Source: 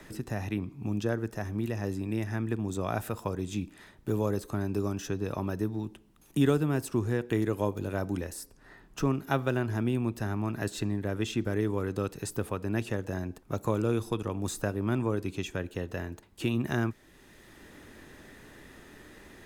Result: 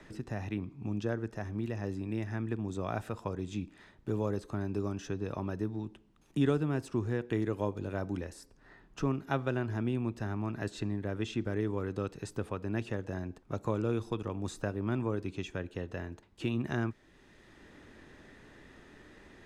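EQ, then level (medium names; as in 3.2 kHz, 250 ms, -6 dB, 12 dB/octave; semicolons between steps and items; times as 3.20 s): distance through air 70 m; -3.5 dB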